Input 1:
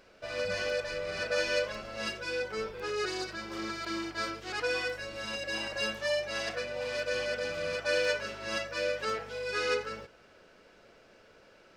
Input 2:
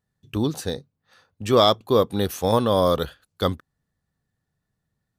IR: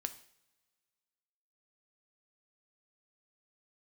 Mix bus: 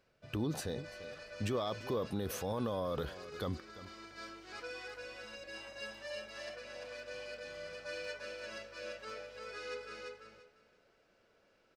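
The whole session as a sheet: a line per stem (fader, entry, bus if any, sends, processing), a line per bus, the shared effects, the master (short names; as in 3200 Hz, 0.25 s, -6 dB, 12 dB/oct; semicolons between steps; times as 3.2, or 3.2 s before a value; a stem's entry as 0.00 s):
-14.0 dB, 0.00 s, no send, echo send -3.5 dB, auto duck -6 dB, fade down 0.40 s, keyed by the second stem
-2.5 dB, 0.00 s, no send, echo send -21.5 dB, high shelf 3200 Hz -7.5 dB; limiter -17.5 dBFS, peak gain reduction 12 dB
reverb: off
echo: feedback echo 0.343 s, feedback 19%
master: limiter -27 dBFS, peak gain reduction 8 dB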